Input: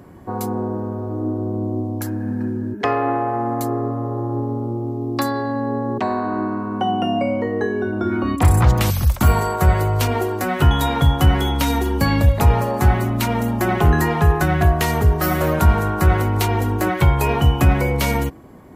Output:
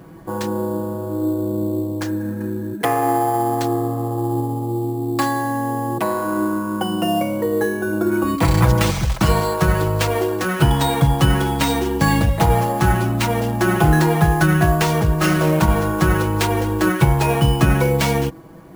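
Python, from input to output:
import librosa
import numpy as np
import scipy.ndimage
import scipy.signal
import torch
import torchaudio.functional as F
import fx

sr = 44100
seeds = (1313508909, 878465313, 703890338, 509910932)

y = x + 0.82 * np.pad(x, (int(6.1 * sr / 1000.0), 0))[:len(x)]
y = fx.sample_hold(y, sr, seeds[0], rate_hz=12000.0, jitter_pct=0)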